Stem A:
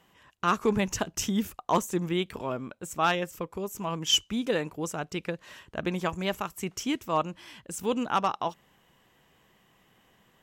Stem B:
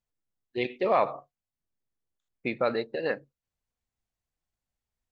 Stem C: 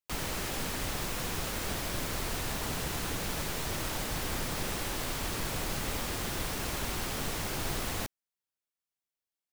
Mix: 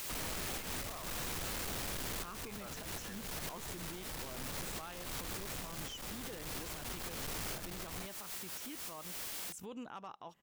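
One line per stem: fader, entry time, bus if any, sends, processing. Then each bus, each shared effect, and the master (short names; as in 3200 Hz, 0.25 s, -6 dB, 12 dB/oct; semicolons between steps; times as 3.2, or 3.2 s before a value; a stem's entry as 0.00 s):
-7.5 dB, 1.80 s, bus A, no send, dry
-15.5 dB, 0.00 s, no bus, no send, HPF 880 Hz 12 dB/oct
0.0 dB, 0.00 s, bus A, no send, infinite clipping
bus A: 0.0 dB, compressor 3:1, threshold -42 dBFS, peak gain reduction 12.5 dB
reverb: off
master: limiter -37.5 dBFS, peak gain reduction 9 dB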